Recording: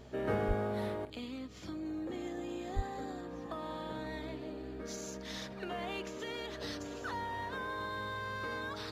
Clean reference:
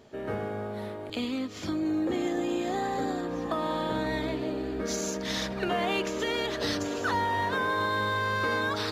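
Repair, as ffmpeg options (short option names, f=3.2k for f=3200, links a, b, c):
-filter_complex "[0:a]bandreject=f=63.9:t=h:w=4,bandreject=f=127.8:t=h:w=4,bandreject=f=191.7:t=h:w=4,bandreject=f=255.6:t=h:w=4,asplit=3[a][b][c];[a]afade=t=out:st=0.47:d=0.02[d];[b]highpass=f=140:w=0.5412,highpass=f=140:w=1.3066,afade=t=in:st=0.47:d=0.02,afade=t=out:st=0.59:d=0.02[e];[c]afade=t=in:st=0.59:d=0.02[f];[d][e][f]amix=inputs=3:normalize=0,asplit=3[g][h][i];[g]afade=t=out:st=2.75:d=0.02[j];[h]highpass=f=140:w=0.5412,highpass=f=140:w=1.3066,afade=t=in:st=2.75:d=0.02,afade=t=out:st=2.87:d=0.02[k];[i]afade=t=in:st=2.87:d=0.02[l];[j][k][l]amix=inputs=3:normalize=0,asetnsamples=n=441:p=0,asendcmd='1.05 volume volume 11.5dB',volume=0dB"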